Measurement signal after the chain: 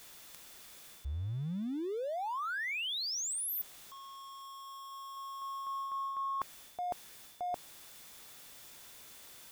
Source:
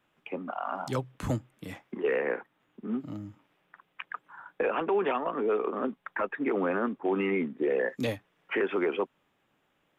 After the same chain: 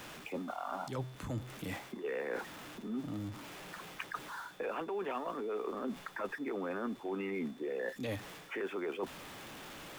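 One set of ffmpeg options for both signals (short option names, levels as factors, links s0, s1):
-af "aeval=exprs='val(0)+0.5*0.00708*sgn(val(0))':c=same,areverse,acompressor=threshold=0.0158:ratio=5,areverse,aeval=exprs='val(0)+0.000562*sin(2*PI*3500*n/s)':c=same"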